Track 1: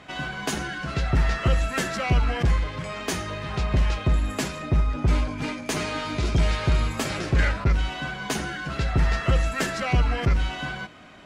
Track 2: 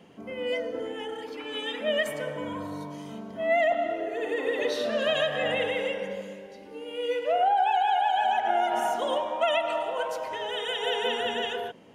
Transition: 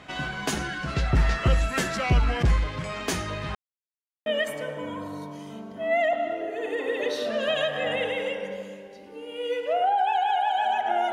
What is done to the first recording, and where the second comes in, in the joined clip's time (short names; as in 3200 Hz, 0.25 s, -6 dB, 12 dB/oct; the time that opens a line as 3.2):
track 1
3.55–4.26 mute
4.26 switch to track 2 from 1.85 s